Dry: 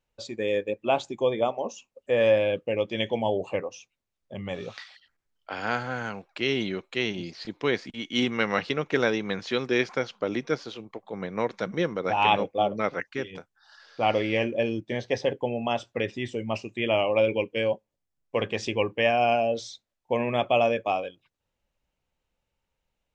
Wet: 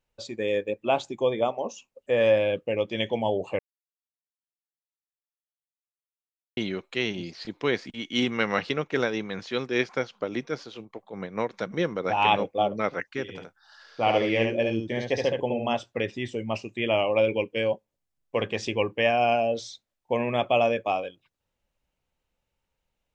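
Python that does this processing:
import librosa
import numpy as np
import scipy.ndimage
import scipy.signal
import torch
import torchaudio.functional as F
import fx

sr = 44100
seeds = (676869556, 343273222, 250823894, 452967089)

y = fx.tremolo(x, sr, hz=5.0, depth=0.46, at=(8.78, 11.7), fade=0.02)
y = fx.echo_single(y, sr, ms=71, db=-4.0, at=(13.28, 15.74), fade=0.02)
y = fx.edit(y, sr, fx.silence(start_s=3.59, length_s=2.98), tone=tone)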